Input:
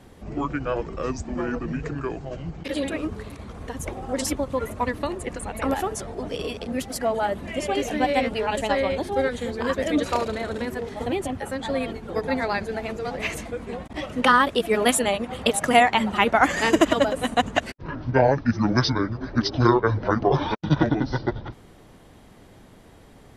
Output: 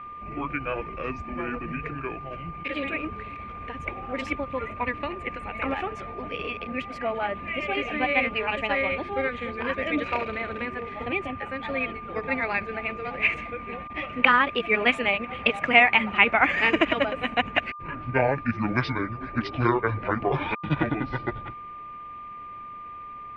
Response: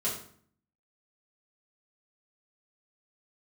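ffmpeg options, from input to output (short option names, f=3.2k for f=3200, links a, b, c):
-af "aeval=exprs='val(0)+0.02*sin(2*PI*1200*n/s)':c=same,lowpass=f=2.4k:t=q:w=6.3,volume=-5.5dB"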